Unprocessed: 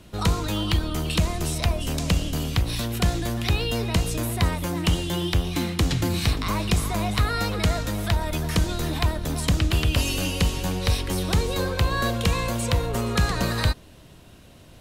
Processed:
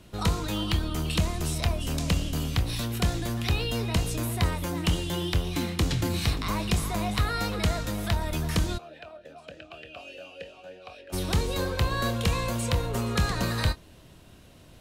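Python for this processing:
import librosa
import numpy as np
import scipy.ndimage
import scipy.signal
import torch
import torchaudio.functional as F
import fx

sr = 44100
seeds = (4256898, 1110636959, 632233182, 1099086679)

y = fx.doubler(x, sr, ms=25.0, db=-12)
y = fx.vowel_sweep(y, sr, vowels='a-e', hz=3.4, at=(8.77, 11.12), fade=0.02)
y = y * 10.0 ** (-3.5 / 20.0)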